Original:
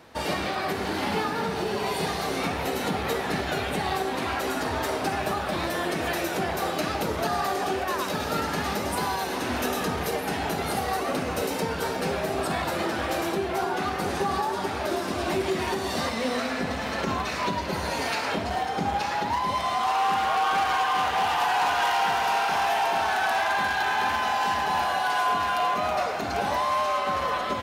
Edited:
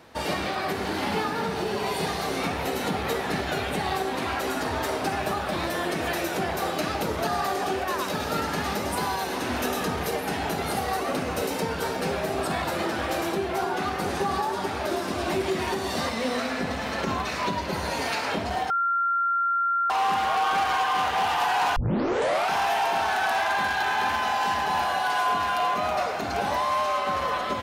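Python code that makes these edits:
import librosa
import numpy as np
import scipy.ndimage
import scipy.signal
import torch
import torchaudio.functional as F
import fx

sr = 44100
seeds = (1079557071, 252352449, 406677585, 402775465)

y = fx.edit(x, sr, fx.bleep(start_s=18.7, length_s=1.2, hz=1380.0, db=-21.0),
    fx.tape_start(start_s=21.76, length_s=0.75), tone=tone)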